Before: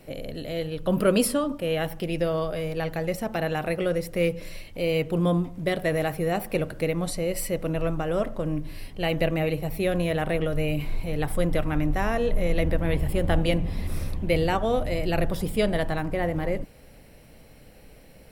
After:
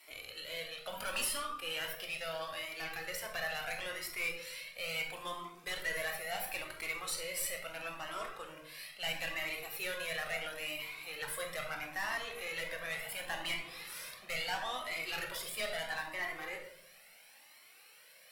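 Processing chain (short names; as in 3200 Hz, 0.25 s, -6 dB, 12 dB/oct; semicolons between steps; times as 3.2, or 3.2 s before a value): HPF 1400 Hz 12 dB/oct; tube stage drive 32 dB, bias 0.25; on a send at -2 dB: reverb RT60 0.75 s, pre-delay 19 ms; on the sum: cascading flanger rising 0.74 Hz; gain +4 dB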